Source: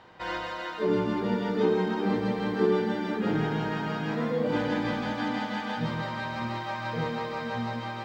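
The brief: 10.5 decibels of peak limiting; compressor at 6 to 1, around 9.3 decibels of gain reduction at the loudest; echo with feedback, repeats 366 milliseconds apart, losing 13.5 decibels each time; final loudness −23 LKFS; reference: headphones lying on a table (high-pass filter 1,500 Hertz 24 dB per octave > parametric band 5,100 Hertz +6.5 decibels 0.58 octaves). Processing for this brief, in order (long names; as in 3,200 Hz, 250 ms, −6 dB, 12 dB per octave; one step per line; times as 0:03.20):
downward compressor 6 to 1, threshold −29 dBFS
brickwall limiter −31.5 dBFS
high-pass filter 1,500 Hz 24 dB per octave
parametric band 5,100 Hz +6.5 dB 0.58 octaves
repeating echo 366 ms, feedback 21%, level −13.5 dB
level +24 dB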